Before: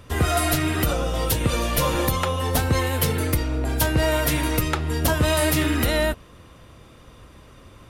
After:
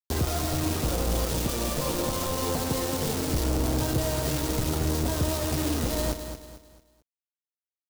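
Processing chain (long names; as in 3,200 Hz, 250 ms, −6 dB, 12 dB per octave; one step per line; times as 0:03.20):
linear delta modulator 32 kbit/s, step −30.5 dBFS
0:01.24–0:03.33: parametric band 71 Hz −10.5 dB 1.3 octaves
brickwall limiter −23.5 dBFS, peak gain reduction 11.5 dB
bit reduction 5 bits
parametric band 2,000 Hz −12 dB 2.1 octaves
repeating echo 222 ms, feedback 36%, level −9 dB
level +4 dB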